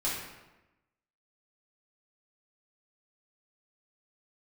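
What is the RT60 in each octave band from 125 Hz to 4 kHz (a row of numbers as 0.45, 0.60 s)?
1.1, 1.1, 1.1, 1.0, 0.95, 0.75 s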